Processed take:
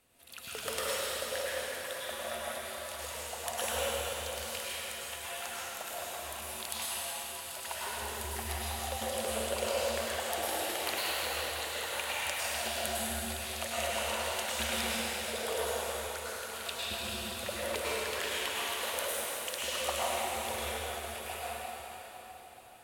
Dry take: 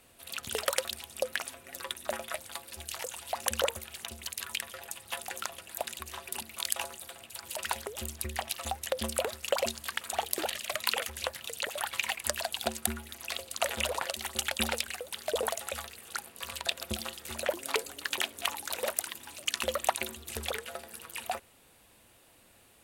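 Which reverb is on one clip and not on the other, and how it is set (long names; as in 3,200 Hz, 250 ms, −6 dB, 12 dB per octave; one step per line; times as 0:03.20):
dense smooth reverb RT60 4.4 s, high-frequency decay 0.85×, pre-delay 90 ms, DRR −9.5 dB
level −10 dB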